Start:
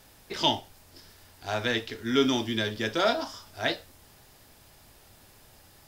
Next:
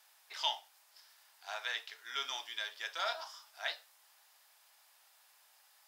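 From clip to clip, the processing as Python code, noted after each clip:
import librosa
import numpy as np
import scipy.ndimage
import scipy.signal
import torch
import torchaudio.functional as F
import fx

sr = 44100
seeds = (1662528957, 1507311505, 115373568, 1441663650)

y = scipy.signal.sosfilt(scipy.signal.butter(4, 790.0, 'highpass', fs=sr, output='sos'), x)
y = y * 10.0 ** (-8.0 / 20.0)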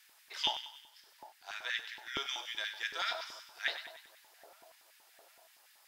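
y = fx.echo_split(x, sr, split_hz=910.0, low_ms=756, high_ms=97, feedback_pct=52, wet_db=-10.5)
y = fx.rider(y, sr, range_db=5, speed_s=2.0)
y = fx.filter_lfo_highpass(y, sr, shape='square', hz=5.3, low_hz=330.0, high_hz=1900.0, q=1.8)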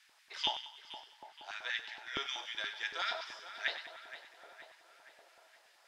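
y = fx.air_absorb(x, sr, metres=58.0)
y = fx.echo_tape(y, sr, ms=470, feedback_pct=62, wet_db=-11.5, lp_hz=3500.0, drive_db=23.0, wow_cents=25)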